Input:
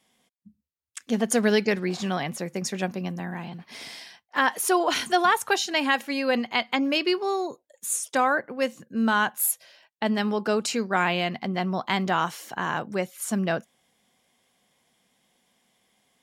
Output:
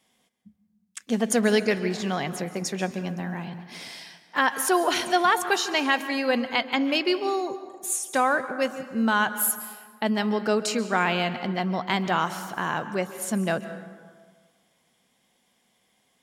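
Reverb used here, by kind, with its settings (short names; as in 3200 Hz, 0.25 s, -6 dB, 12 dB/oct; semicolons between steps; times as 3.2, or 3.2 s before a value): plate-style reverb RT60 1.6 s, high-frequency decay 0.5×, pre-delay 0.12 s, DRR 11.5 dB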